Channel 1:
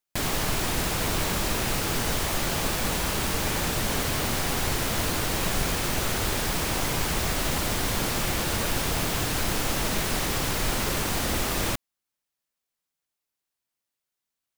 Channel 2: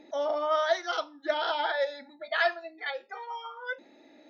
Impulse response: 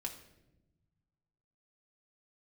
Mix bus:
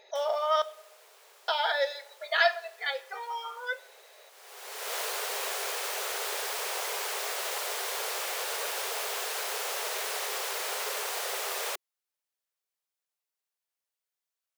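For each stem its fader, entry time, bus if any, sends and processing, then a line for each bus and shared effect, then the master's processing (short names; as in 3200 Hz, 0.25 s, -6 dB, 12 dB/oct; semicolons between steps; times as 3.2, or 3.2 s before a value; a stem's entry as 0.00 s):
-4.5 dB, 0.00 s, no send, auto duck -24 dB, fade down 0.25 s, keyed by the second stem
-2.5 dB, 0.00 s, muted 0.62–1.48, send -6 dB, high shelf 3100 Hz +9 dB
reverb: on, RT60 0.95 s, pre-delay 4 ms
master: brick-wall FIR high-pass 380 Hz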